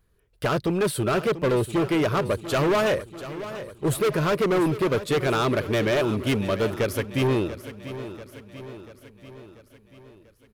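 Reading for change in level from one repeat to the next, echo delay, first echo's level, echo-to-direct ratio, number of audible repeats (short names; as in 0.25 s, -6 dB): -5.0 dB, 0.689 s, -13.5 dB, -12.0 dB, 5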